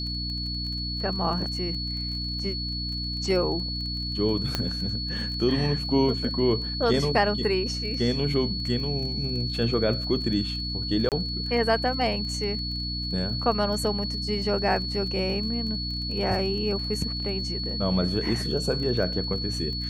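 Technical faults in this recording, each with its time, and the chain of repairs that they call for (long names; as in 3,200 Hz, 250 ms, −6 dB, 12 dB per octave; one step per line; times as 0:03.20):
surface crackle 23 per second −34 dBFS
mains hum 60 Hz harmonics 5 −33 dBFS
whistle 4,400 Hz −31 dBFS
0:04.55: click −10 dBFS
0:11.09–0:11.12: drop-out 28 ms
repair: click removal
hum removal 60 Hz, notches 5
notch filter 4,400 Hz, Q 30
repair the gap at 0:11.09, 28 ms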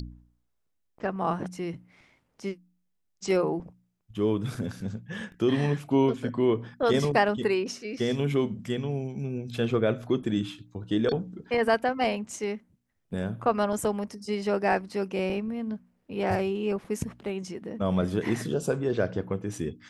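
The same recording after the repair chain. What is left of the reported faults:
none of them is left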